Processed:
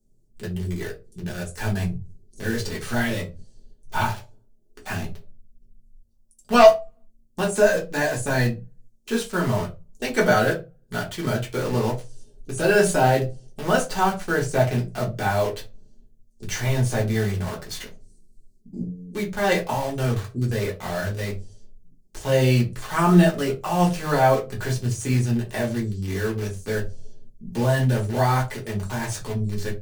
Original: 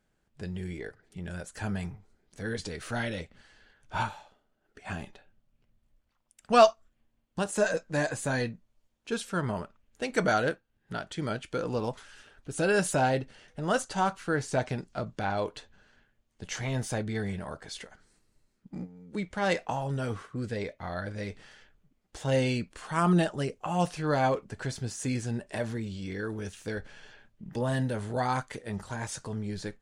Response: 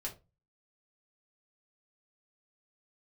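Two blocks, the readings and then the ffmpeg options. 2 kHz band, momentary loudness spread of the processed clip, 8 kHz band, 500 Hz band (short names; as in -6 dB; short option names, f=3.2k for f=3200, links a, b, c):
+7.5 dB, 15 LU, +6.5 dB, +8.0 dB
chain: -filter_complex "[0:a]acrossover=split=100|500|5400[a][b][c][d];[c]acrusher=bits=6:mix=0:aa=0.000001[e];[a][b][e][d]amix=inputs=4:normalize=0,aeval=exprs='0.531*sin(PI/2*1.58*val(0)/0.531)':c=same[f];[1:a]atrim=start_sample=2205[g];[f][g]afir=irnorm=-1:irlink=0"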